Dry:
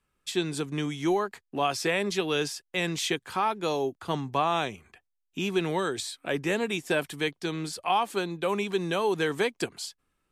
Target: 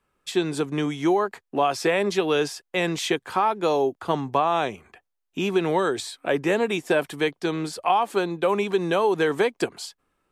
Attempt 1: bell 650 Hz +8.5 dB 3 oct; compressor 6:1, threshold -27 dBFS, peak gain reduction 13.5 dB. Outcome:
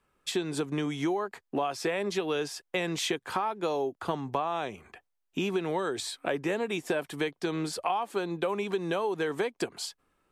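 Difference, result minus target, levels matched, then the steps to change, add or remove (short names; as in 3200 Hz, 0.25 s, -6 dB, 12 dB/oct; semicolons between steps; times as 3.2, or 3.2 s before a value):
compressor: peak gain reduction +9 dB
change: compressor 6:1, threshold -16 dBFS, peak gain reduction 4.5 dB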